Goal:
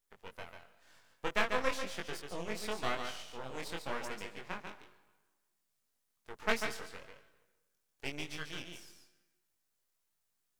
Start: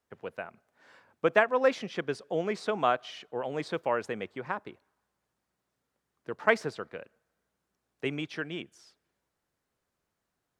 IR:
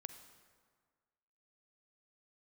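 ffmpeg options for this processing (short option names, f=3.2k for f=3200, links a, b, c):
-filter_complex "[0:a]crystalizer=i=5.5:c=0,asplit=2[a][b];[1:a]atrim=start_sample=2205,asetrate=57330,aresample=44100,adelay=143[c];[b][c]afir=irnorm=-1:irlink=0,volume=1.5dB[d];[a][d]amix=inputs=2:normalize=0,aeval=exprs='max(val(0),0)':c=same,flanger=delay=19.5:depth=4.2:speed=0.96,volume=-5.5dB"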